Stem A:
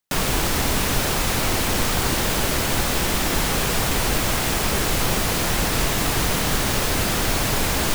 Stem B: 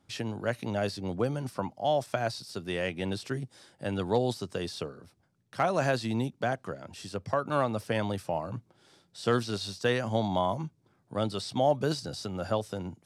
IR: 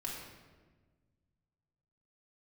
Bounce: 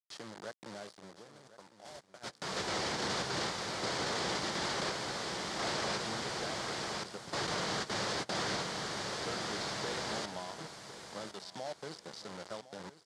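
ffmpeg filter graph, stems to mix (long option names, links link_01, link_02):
-filter_complex "[0:a]adelay=1250,volume=-9dB,asplit=3[link_01][link_02][link_03];[link_01]atrim=end=5.98,asetpts=PTS-STARTPTS,afade=type=out:start_time=5.976:duration=0.004:curve=hsin[link_04];[link_02]atrim=start=5.98:end=7.33,asetpts=PTS-STARTPTS,volume=0[link_05];[link_03]atrim=start=7.33,asetpts=PTS-STARTPTS,afade=type=in:duration=0.004:curve=hsin[link_06];[link_04][link_05][link_06]concat=n=3:v=0:a=1,asplit=2[link_07][link_08];[link_08]volume=-4.5dB[link_09];[1:a]bandreject=frequency=123.2:width_type=h:width=4,bandreject=frequency=246.4:width_type=h:width=4,bandreject=frequency=369.6:width_type=h:width=4,bandreject=frequency=492.8:width_type=h:width=4,bandreject=frequency=616:width_type=h:width=4,bandreject=frequency=739.2:width_type=h:width=4,bandreject=frequency=862.4:width_type=h:width=4,bandreject=frequency=985.6:width_type=h:width=4,bandreject=frequency=1108.8:width_type=h:width=4,bandreject=frequency=1232:width_type=h:width=4,bandreject=frequency=1355.2:width_type=h:width=4,bandreject=frequency=1478.4:width_type=h:width=4,bandreject=frequency=1601.6:width_type=h:width=4,bandreject=frequency=1724.8:width_type=h:width=4,bandreject=frequency=1848:width_type=h:width=4,bandreject=frequency=1971.2:width_type=h:width=4,bandreject=frequency=2094.4:width_type=h:width=4,bandreject=frequency=2217.6:width_type=h:width=4,bandreject=frequency=2340.8:width_type=h:width=4,bandreject=frequency=2464:width_type=h:width=4,bandreject=frequency=2587.2:width_type=h:width=4,bandreject=frequency=2710.4:width_type=h:width=4,bandreject=frequency=2833.6:width_type=h:width=4,bandreject=frequency=2956.8:width_type=h:width=4,acompressor=threshold=-34dB:ratio=3,acrusher=bits=5:mix=0:aa=0.000001,volume=3dB,afade=type=out:start_time=0.69:duration=0.52:silence=0.316228,afade=type=in:start_time=2.15:duration=0.77:silence=0.281838,asplit=3[link_10][link_11][link_12];[link_11]volume=-16dB[link_13];[link_12]apad=whole_len=405641[link_14];[link_07][link_14]sidechaingate=range=-43dB:threshold=-48dB:ratio=16:detection=peak[link_15];[link_09][link_13]amix=inputs=2:normalize=0,aecho=0:1:1057|2114|3171|4228:1|0.27|0.0729|0.0197[link_16];[link_15][link_10][link_16]amix=inputs=3:normalize=0,acrossover=split=6700[link_17][link_18];[link_18]acompressor=threshold=-51dB:ratio=4:attack=1:release=60[link_19];[link_17][link_19]amix=inputs=2:normalize=0,highpass=180,equalizer=frequency=260:width_type=q:width=4:gain=-8,equalizer=frequency=2600:width_type=q:width=4:gain=-7,equalizer=frequency=4700:width_type=q:width=4:gain=4,lowpass=frequency=8900:width=0.5412,lowpass=frequency=8900:width=1.3066,alimiter=level_in=2dB:limit=-24dB:level=0:latency=1:release=16,volume=-2dB"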